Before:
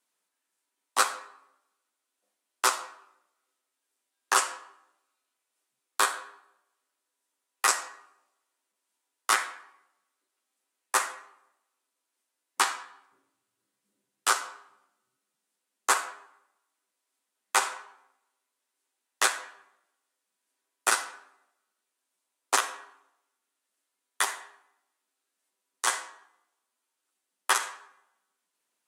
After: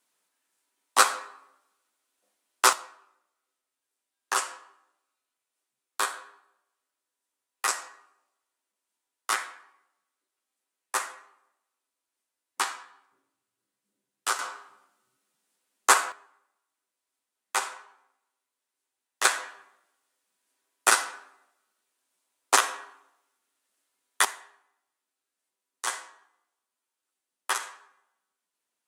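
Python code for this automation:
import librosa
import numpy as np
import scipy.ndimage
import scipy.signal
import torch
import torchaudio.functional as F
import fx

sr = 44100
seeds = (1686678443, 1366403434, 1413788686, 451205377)

y = fx.gain(x, sr, db=fx.steps((0.0, 4.5), (2.73, -3.5), (14.39, 5.0), (16.12, -3.5), (19.25, 4.0), (24.25, -4.0)))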